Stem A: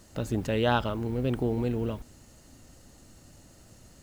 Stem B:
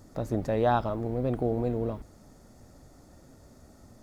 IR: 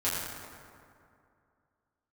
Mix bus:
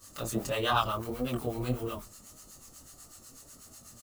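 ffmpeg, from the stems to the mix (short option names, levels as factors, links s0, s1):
-filter_complex "[0:a]crystalizer=i=8.5:c=0,asplit=2[s0][s1];[s1]adelay=5.7,afreqshift=2.4[s2];[s0][s2]amix=inputs=2:normalize=1,volume=0.794[s3];[1:a]adelay=24,volume=0.944[s4];[s3][s4]amix=inputs=2:normalize=0,equalizer=f=1200:w=4.9:g=13.5,flanger=delay=20:depth=7.4:speed=1.6,acrossover=split=860[s5][s6];[s5]aeval=exprs='val(0)*(1-0.7/2+0.7/2*cos(2*PI*8.1*n/s))':c=same[s7];[s6]aeval=exprs='val(0)*(1-0.7/2-0.7/2*cos(2*PI*8.1*n/s))':c=same[s8];[s7][s8]amix=inputs=2:normalize=0"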